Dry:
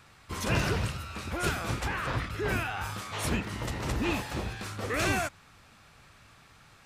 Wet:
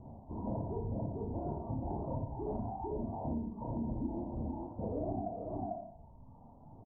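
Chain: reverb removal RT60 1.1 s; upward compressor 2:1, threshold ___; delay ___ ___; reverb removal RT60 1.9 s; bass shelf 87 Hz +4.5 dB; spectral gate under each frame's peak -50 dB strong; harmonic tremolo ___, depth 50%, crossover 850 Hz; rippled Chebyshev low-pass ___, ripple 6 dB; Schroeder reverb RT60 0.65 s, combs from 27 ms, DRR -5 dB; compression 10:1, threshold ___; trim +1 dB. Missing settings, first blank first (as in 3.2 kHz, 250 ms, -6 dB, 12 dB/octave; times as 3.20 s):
-35 dBFS, 446 ms, -4.5 dB, 1 Hz, 970 Hz, -34 dBFS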